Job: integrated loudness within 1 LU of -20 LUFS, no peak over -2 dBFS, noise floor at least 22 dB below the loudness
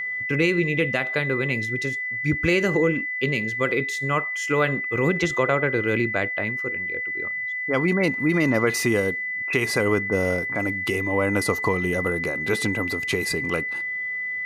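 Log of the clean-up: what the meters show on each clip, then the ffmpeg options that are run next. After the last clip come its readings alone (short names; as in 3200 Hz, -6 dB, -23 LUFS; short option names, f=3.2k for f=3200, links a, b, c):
steady tone 2000 Hz; tone level -26 dBFS; loudness -23.0 LUFS; peak -9.0 dBFS; loudness target -20.0 LUFS
-> -af "bandreject=f=2k:w=30"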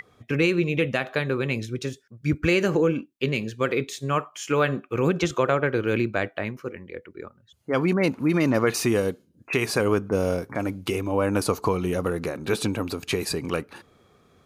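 steady tone none; loudness -25.0 LUFS; peak -10.0 dBFS; loudness target -20.0 LUFS
-> -af "volume=5dB"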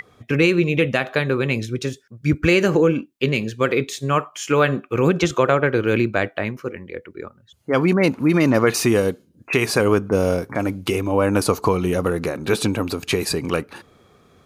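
loudness -20.0 LUFS; peak -5.0 dBFS; noise floor -56 dBFS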